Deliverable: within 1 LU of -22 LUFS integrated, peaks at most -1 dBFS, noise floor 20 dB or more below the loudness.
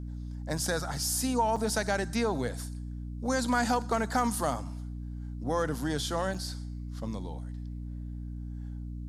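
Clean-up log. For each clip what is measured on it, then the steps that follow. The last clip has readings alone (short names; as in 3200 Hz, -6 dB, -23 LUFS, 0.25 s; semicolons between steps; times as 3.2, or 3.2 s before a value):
dropouts 2; longest dropout 4.9 ms; hum 60 Hz; harmonics up to 300 Hz; hum level -35 dBFS; loudness -32.0 LUFS; peak -14.0 dBFS; loudness target -22.0 LUFS
-> interpolate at 1.56/6.34, 4.9 ms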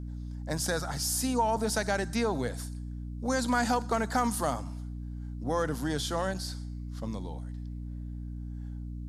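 dropouts 0; hum 60 Hz; harmonics up to 300 Hz; hum level -35 dBFS
-> de-hum 60 Hz, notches 5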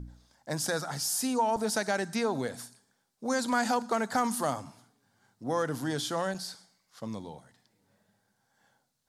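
hum none; loudness -31.0 LUFS; peak -13.5 dBFS; loudness target -22.0 LUFS
-> gain +9 dB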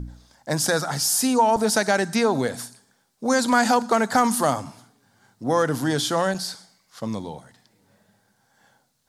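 loudness -22.0 LUFS; peak -4.5 dBFS; noise floor -67 dBFS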